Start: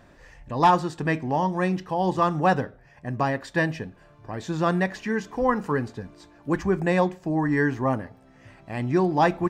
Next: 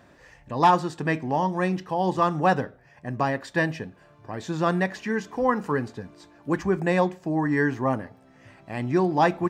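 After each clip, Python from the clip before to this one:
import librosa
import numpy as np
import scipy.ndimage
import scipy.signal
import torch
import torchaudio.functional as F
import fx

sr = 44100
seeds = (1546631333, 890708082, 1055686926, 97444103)

y = scipy.signal.sosfilt(scipy.signal.butter(2, 49.0, 'highpass', fs=sr, output='sos'), x)
y = fx.low_shelf(y, sr, hz=66.0, db=-8.5)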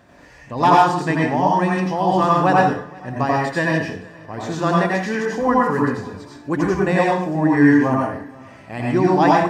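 y = x + 10.0 ** (-23.5 / 20.0) * np.pad(x, (int(473 * sr / 1000.0), 0))[:len(x)]
y = fx.rev_plate(y, sr, seeds[0], rt60_s=0.5, hf_ratio=0.9, predelay_ms=75, drr_db=-3.5)
y = F.gain(torch.from_numpy(y), 2.0).numpy()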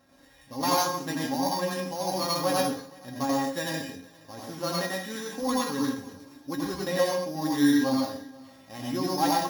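y = np.r_[np.sort(x[:len(x) // 8 * 8].reshape(-1, 8), axis=1).ravel(), x[len(x) // 8 * 8:]]
y = fx.comb_fb(y, sr, f0_hz=270.0, decay_s=0.16, harmonics='all', damping=0.0, mix_pct=90)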